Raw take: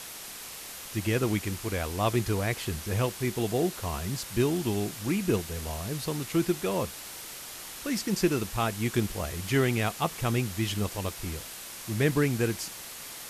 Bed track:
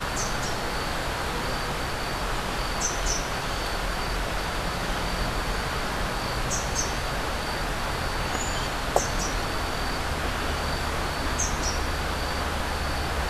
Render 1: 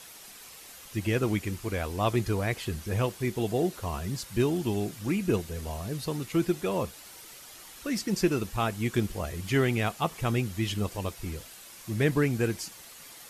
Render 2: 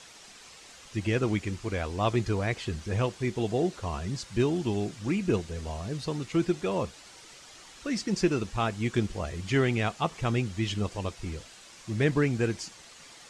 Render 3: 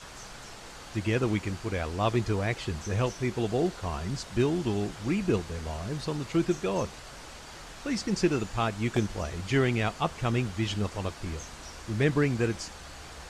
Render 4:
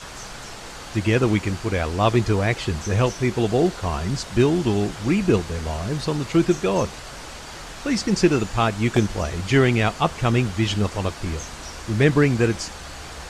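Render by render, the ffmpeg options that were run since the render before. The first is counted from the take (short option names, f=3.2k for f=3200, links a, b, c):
-af "afftdn=nr=8:nf=-42"
-af "lowpass=f=7.8k:w=0.5412,lowpass=f=7.8k:w=1.3066"
-filter_complex "[1:a]volume=-18dB[a];[0:a][a]amix=inputs=2:normalize=0"
-af "volume=8dB"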